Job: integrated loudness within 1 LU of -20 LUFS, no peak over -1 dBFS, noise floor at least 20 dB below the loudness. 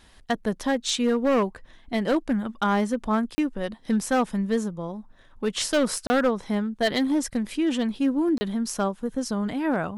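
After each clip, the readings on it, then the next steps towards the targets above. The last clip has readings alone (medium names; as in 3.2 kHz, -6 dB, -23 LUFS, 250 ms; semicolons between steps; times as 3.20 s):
clipped samples 1.7%; clipping level -16.5 dBFS; dropouts 3; longest dropout 30 ms; loudness -25.5 LUFS; peak level -16.5 dBFS; loudness target -20.0 LUFS
-> clip repair -16.5 dBFS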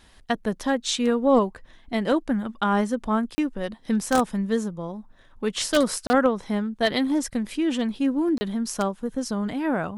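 clipped samples 0.0%; dropouts 3; longest dropout 30 ms
-> interpolate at 3.35/6.07/8.38 s, 30 ms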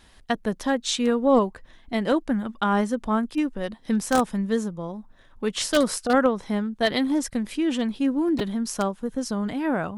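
dropouts 0; loudness -24.5 LUFS; peak level -7.5 dBFS; loudness target -20.0 LUFS
-> trim +4.5 dB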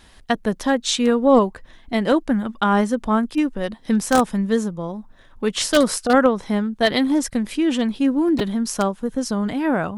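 loudness -20.0 LUFS; peak level -3.0 dBFS; noise floor -49 dBFS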